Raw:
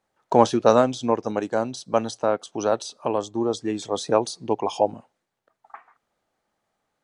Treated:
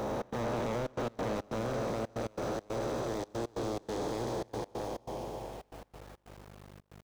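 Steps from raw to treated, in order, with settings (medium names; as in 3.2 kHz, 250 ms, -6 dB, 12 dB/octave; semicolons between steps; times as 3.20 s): spectral blur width 1380 ms; peaking EQ 120 Hz +7.5 dB 0.36 oct; delay 212 ms -9.5 dB; saturation -29.5 dBFS, distortion -8 dB; hum notches 50/100/150/200/250/300 Hz; on a send: filtered feedback delay 950 ms, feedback 45%, low-pass 1.4 kHz, level -18.5 dB; on the sum: hum 50 Hz, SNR 15 dB; small samples zeroed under -48 dBFS; trance gate "xx.xxxxx.x." 139 bpm -24 dB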